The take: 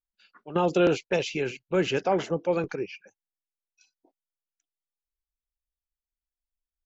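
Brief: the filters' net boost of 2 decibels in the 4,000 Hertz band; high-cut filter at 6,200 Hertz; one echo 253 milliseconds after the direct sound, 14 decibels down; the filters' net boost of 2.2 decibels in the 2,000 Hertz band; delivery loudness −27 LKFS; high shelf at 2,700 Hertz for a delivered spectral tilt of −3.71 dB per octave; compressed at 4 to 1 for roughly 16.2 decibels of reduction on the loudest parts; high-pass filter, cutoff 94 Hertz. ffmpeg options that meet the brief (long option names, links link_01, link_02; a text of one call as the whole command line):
ffmpeg -i in.wav -af "highpass=94,lowpass=6200,equalizer=frequency=2000:width_type=o:gain=4.5,highshelf=frequency=2700:gain=-8,equalizer=frequency=4000:width_type=o:gain=8,acompressor=threshold=-39dB:ratio=4,aecho=1:1:253:0.2,volume=14dB" out.wav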